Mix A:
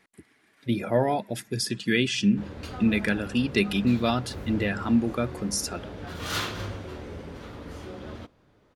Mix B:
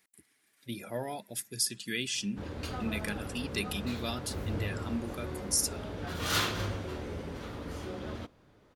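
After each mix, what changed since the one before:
speech: add pre-emphasis filter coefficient 0.8; master: add treble shelf 7.2 kHz +4 dB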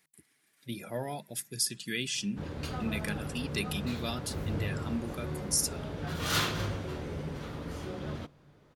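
master: add peaking EQ 150 Hz +12 dB 0.21 oct

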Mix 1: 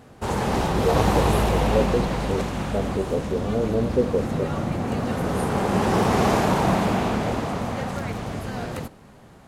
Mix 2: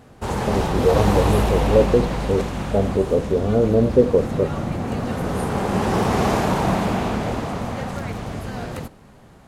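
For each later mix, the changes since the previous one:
speech +6.5 dB; master: add bass shelf 61 Hz +5.5 dB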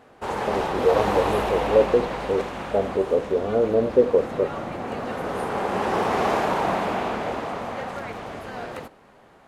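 master: add tone controls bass -15 dB, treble -9 dB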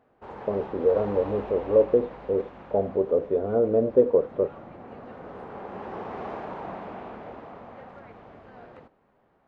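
background -11.0 dB; master: add tape spacing loss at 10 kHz 29 dB

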